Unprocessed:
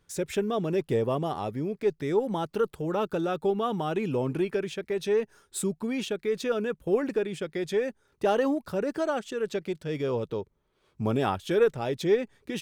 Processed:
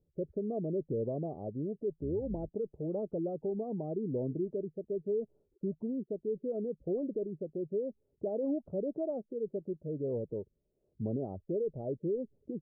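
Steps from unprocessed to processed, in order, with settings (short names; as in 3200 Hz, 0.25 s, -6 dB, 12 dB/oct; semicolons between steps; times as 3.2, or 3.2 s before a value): 1.96–2.49 octaver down 2 oct, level -5 dB; limiter -20 dBFS, peak gain reduction 8 dB; spectral gate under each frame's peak -25 dB strong; elliptic low-pass 640 Hz, stop band 80 dB; gain -5 dB; AAC 64 kbps 22050 Hz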